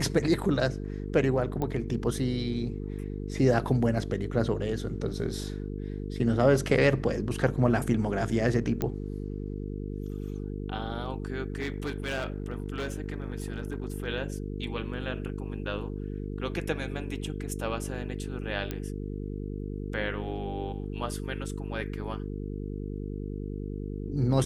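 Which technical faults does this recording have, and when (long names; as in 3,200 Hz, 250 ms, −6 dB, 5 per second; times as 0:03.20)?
mains buzz 50 Hz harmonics 9 −35 dBFS
0:01.62: click −19 dBFS
0:08.82: click −15 dBFS
0:11.52–0:14.06: clipping −27 dBFS
0:18.71: click −18 dBFS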